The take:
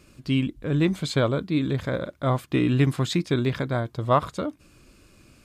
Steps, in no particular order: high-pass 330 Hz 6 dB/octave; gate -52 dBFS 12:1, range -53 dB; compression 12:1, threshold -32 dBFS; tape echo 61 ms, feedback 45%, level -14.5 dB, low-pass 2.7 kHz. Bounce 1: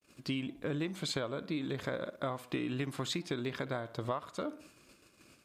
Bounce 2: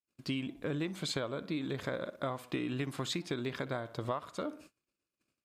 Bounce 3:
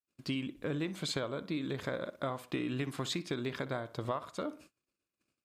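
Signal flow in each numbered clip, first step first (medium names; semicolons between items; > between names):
gate > tape echo > high-pass > compression; tape echo > high-pass > compression > gate; high-pass > compression > tape echo > gate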